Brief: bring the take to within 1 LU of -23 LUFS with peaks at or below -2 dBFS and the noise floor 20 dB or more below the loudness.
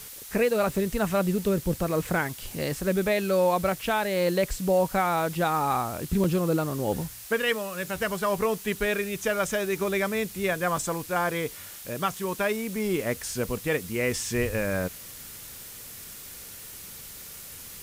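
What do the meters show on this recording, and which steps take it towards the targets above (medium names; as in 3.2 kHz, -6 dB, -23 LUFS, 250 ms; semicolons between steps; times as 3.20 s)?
dropouts 1; longest dropout 2.4 ms; noise floor -43 dBFS; noise floor target -47 dBFS; loudness -27.0 LUFS; peak level -13.5 dBFS; loudness target -23.0 LUFS
-> interpolate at 6.24 s, 2.4 ms; noise reduction 6 dB, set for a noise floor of -43 dBFS; trim +4 dB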